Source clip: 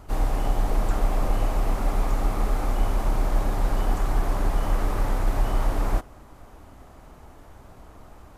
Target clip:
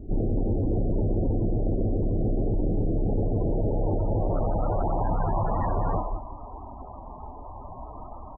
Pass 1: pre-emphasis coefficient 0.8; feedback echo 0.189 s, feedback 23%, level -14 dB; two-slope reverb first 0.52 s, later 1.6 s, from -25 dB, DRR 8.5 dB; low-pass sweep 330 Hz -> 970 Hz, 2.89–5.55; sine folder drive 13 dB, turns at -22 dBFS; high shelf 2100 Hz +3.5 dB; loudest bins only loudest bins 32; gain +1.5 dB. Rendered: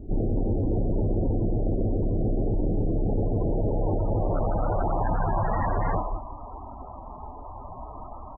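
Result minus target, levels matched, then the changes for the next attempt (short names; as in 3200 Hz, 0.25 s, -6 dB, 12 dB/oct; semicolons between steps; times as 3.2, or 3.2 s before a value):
2000 Hz band +8.5 dB
change: high shelf 2100 Hz -4.5 dB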